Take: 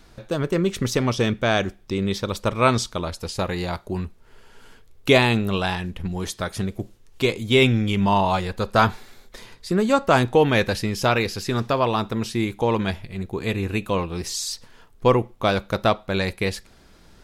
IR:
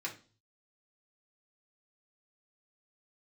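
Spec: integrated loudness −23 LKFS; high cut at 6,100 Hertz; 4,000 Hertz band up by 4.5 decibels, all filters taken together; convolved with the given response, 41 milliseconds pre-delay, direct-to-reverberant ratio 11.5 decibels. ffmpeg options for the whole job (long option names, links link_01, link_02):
-filter_complex "[0:a]lowpass=6100,equalizer=frequency=4000:width_type=o:gain=6,asplit=2[link_01][link_02];[1:a]atrim=start_sample=2205,adelay=41[link_03];[link_02][link_03]afir=irnorm=-1:irlink=0,volume=-13dB[link_04];[link_01][link_04]amix=inputs=2:normalize=0,volume=-1.5dB"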